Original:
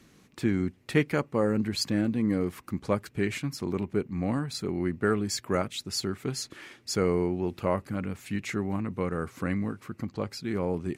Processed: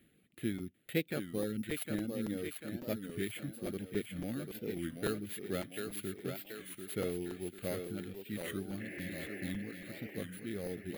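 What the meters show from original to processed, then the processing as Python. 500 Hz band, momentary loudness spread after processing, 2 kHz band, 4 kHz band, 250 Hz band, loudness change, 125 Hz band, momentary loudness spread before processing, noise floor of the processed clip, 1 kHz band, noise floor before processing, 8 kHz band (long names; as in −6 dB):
−9.5 dB, 6 LU, −8.0 dB, −11.5 dB, −10.0 dB, −9.5 dB, −11.5 dB, 8 LU, −67 dBFS, −16.0 dB, −59 dBFS, −9.5 dB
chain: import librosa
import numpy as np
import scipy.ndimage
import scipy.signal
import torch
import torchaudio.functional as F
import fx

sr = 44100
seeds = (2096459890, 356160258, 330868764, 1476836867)

y = np.r_[np.sort(x[:len(x) // 8 * 8].reshape(-1, 8), axis=1).ravel(), x[len(x) // 8 * 8:]]
y = fx.dereverb_blind(y, sr, rt60_s=0.83)
y = fx.spec_repair(y, sr, seeds[0], start_s=8.83, length_s=0.64, low_hz=290.0, high_hz=3000.0, source='after')
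y = fx.low_shelf(y, sr, hz=220.0, db=-6.0)
y = fx.fixed_phaser(y, sr, hz=2400.0, stages=4)
y = fx.echo_thinned(y, sr, ms=743, feedback_pct=56, hz=200.0, wet_db=-5)
y = fx.buffer_crackle(y, sr, first_s=0.3, period_s=0.28, block=256, kind='repeat')
y = fx.record_warp(y, sr, rpm=33.33, depth_cents=160.0)
y = F.gain(torch.from_numpy(y), -5.5).numpy()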